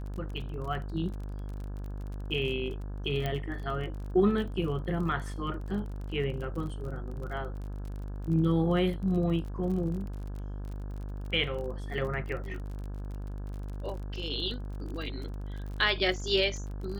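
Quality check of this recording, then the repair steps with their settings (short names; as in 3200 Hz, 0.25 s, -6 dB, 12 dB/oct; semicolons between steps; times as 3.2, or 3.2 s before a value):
buzz 50 Hz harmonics 34 -37 dBFS
crackle 36/s -38 dBFS
3.26 pop -19 dBFS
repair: de-click; de-hum 50 Hz, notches 34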